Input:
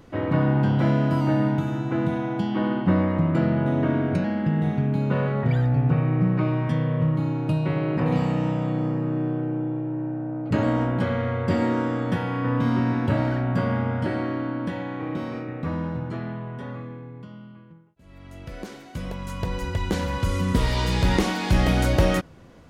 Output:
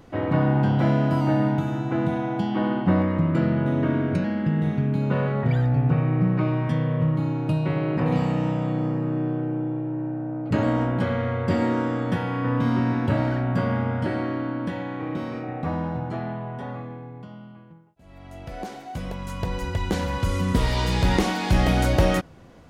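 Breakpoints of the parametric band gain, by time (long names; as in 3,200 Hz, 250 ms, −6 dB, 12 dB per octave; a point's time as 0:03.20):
parametric band 750 Hz 0.34 octaves
+4.5 dB
from 0:03.02 −6 dB
from 0:05.03 +1 dB
from 0:15.43 +13 dB
from 0:18.99 +3.5 dB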